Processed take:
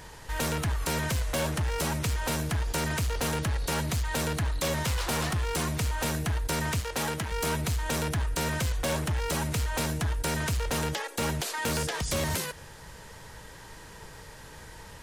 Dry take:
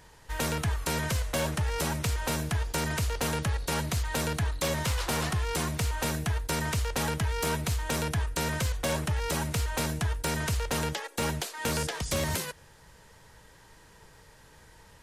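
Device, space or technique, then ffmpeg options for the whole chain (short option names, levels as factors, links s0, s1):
clipper into limiter: -filter_complex "[0:a]asoftclip=type=hard:threshold=0.0501,alimiter=level_in=2.82:limit=0.0631:level=0:latency=1:release=26,volume=0.355,asettb=1/sr,asplit=3[s0][s1][s2];[s0]atrim=end=6.804[s3];[s1]atrim=start=6.8:end=7.32,asetpts=PTS-STARTPTS,afade=t=in:d=0.004:c=qsin,afade=t=out:st=0.516:d=0.004:c=qsin,highpass=f=170:p=1[s4];[s2]atrim=start=7.316[s5];[s3][s4]acrossfade=d=0.004:c1=hsin:c2=qsin[s6];[s6][s5]acrossfade=d=0.004:c1=qsin:c2=hsin,volume=2.66"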